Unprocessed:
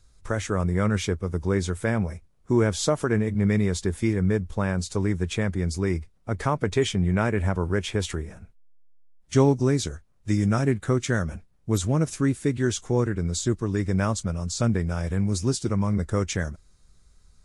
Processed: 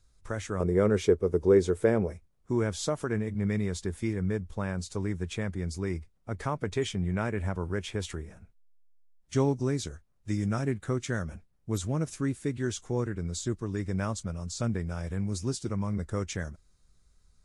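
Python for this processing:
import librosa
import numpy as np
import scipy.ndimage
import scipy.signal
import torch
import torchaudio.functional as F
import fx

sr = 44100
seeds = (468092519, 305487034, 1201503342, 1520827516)

y = fx.peak_eq(x, sr, hz=420.0, db=15.0, octaves=1.1, at=(0.6, 2.12))
y = y * 10.0 ** (-7.0 / 20.0)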